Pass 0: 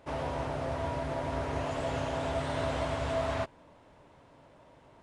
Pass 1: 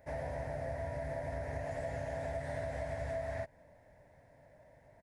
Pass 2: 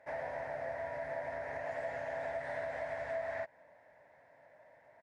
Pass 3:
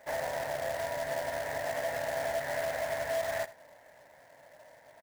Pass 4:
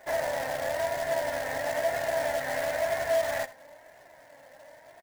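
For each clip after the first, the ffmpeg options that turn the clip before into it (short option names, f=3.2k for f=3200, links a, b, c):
-af "firequalizer=gain_entry='entry(100,0);entry(250,-7);entry(350,-12);entry(610,2);entry(1200,-18);entry(1800,4);entry(2900,-17);entry(5100,-6);entry(7800,-6);entry(12000,4)':delay=0.05:min_phase=1,acompressor=threshold=-34dB:ratio=6,volume=-1dB"
-af "bandpass=f=1.4k:t=q:w=0.76:csg=0,volume=5dB"
-af "acrusher=bits=2:mode=log:mix=0:aa=0.000001,aecho=1:1:82:0.141,volume=5dB"
-af "flanger=delay=2.7:depth=1.2:regen=53:speed=1:shape=triangular,volume=8dB"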